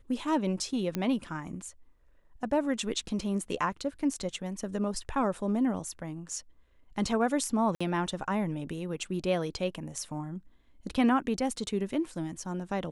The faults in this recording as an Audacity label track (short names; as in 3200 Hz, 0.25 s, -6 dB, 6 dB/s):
0.950000	0.950000	pop -17 dBFS
7.750000	7.800000	gap 55 ms